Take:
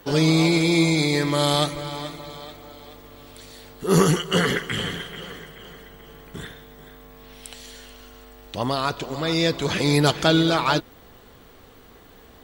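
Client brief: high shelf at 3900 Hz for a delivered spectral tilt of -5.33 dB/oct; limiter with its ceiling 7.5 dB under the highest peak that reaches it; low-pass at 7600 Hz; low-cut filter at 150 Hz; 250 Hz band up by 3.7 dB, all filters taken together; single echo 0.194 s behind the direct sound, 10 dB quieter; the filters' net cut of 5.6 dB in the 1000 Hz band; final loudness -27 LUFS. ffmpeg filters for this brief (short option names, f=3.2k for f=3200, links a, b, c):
-af "highpass=150,lowpass=7.6k,equalizer=f=250:t=o:g=7.5,equalizer=f=1k:t=o:g=-7.5,highshelf=f=3.9k:g=-7,alimiter=limit=-11.5dB:level=0:latency=1,aecho=1:1:194:0.316,volume=-4.5dB"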